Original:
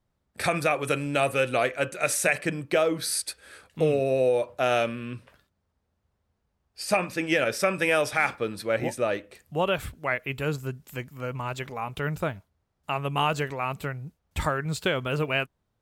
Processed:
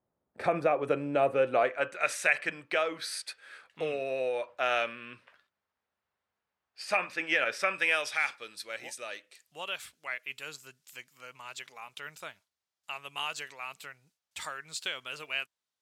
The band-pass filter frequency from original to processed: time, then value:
band-pass filter, Q 0.76
1.37 s 530 Hz
2.14 s 1.9 kHz
7.60 s 1.9 kHz
8.47 s 5.6 kHz

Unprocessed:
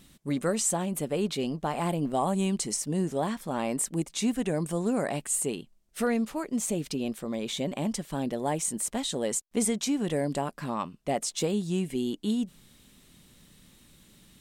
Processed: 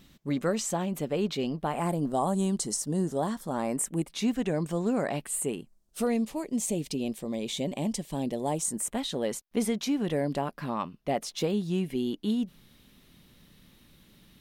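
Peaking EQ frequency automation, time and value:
peaking EQ -12.5 dB 0.58 oct
1.52 s 9.4 kHz
1.99 s 2.4 kHz
3.53 s 2.4 kHz
4.31 s 10 kHz
5.08 s 10 kHz
6.14 s 1.4 kHz
8.46 s 1.4 kHz
9.06 s 7.9 kHz

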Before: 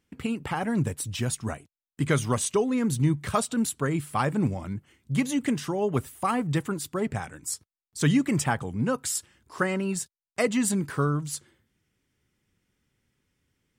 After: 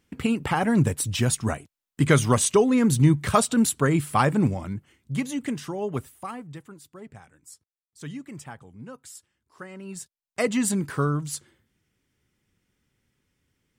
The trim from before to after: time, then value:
4.17 s +5.5 dB
5.30 s -3 dB
5.96 s -3 dB
6.58 s -15 dB
9.69 s -15 dB
10.01 s -6 dB
10.48 s +1 dB

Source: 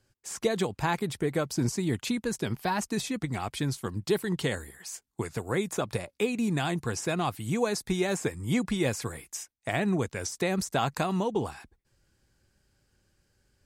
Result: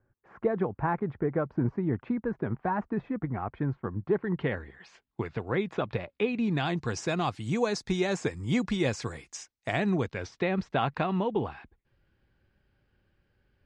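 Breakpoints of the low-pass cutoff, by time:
low-pass 24 dB/octave
4.11 s 1.6 kHz
4.82 s 3.4 kHz
6.27 s 3.4 kHz
6.99 s 6.4 kHz
9.79 s 6.4 kHz
10.45 s 3.3 kHz

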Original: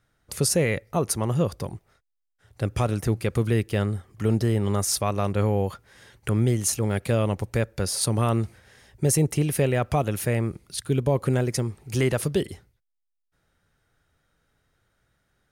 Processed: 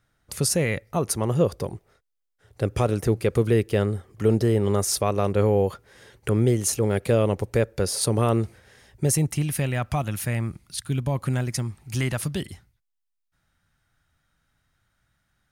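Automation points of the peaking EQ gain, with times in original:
peaking EQ 440 Hz 0.83 oct
0.91 s -2.5 dB
1.39 s +6.5 dB
8.31 s +6.5 dB
9.06 s -1 dB
9.31 s -12 dB

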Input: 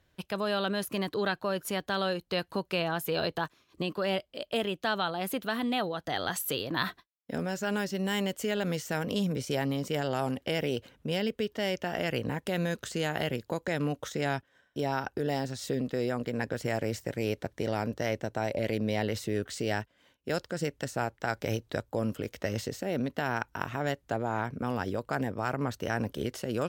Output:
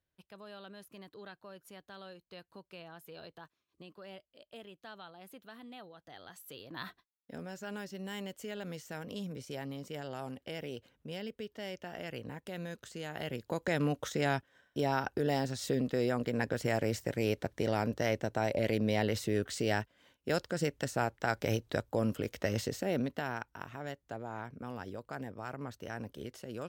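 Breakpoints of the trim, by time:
6.37 s -19.5 dB
6.89 s -11 dB
13.06 s -11 dB
13.66 s -0.5 dB
22.91 s -0.5 dB
23.56 s -10.5 dB

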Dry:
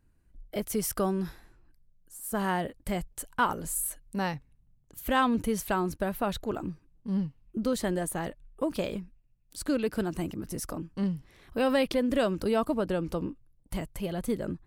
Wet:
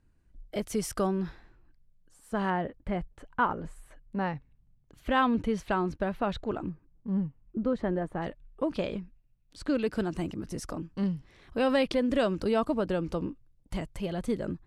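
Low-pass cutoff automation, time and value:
7.8 kHz
from 1.07 s 3.9 kHz
from 2.50 s 2 kHz
from 4.35 s 3.7 kHz
from 6.69 s 1.6 kHz
from 8.22 s 4.2 kHz
from 9.75 s 6.9 kHz

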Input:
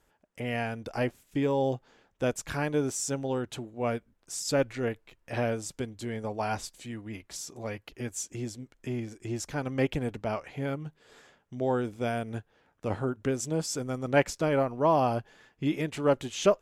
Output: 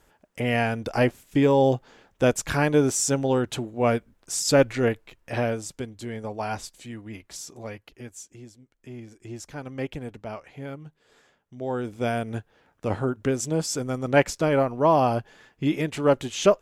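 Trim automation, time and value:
4.87 s +8 dB
5.78 s +1 dB
7.54 s +1 dB
8.59 s -11 dB
9.16 s -4 dB
11.56 s -4 dB
12.04 s +4.5 dB

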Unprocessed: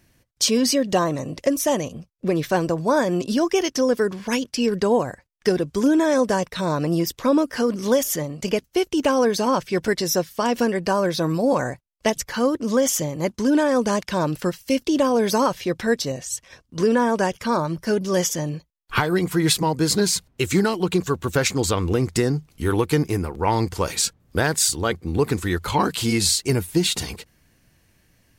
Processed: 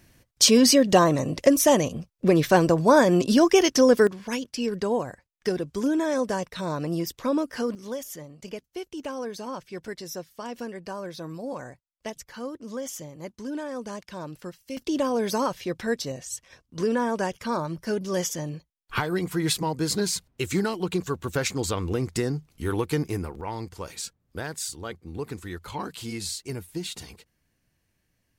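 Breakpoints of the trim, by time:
+2.5 dB
from 4.07 s -6.5 dB
from 7.75 s -14.5 dB
from 14.77 s -6 dB
from 23.41 s -13 dB

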